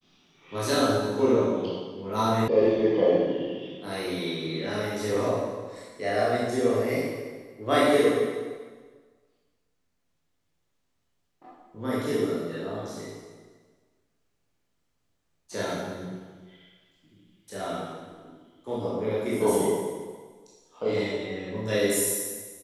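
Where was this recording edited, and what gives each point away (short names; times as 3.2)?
2.48 sound cut off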